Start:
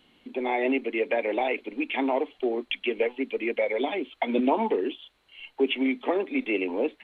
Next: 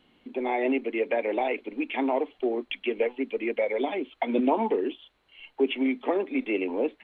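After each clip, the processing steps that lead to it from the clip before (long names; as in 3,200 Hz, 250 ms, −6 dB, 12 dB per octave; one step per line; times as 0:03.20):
high-shelf EQ 3,200 Hz −8.5 dB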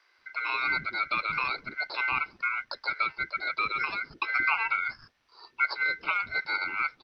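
ring modulation 1,800 Hz
multiband delay without the direct sound highs, lows 180 ms, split 370 Hz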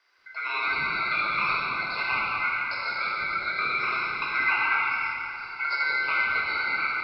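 dense smooth reverb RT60 3.2 s, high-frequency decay 0.85×, DRR −6 dB
level −3.5 dB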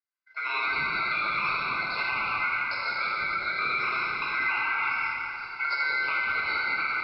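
downward expander −36 dBFS
brickwall limiter −18.5 dBFS, peak gain reduction 6 dB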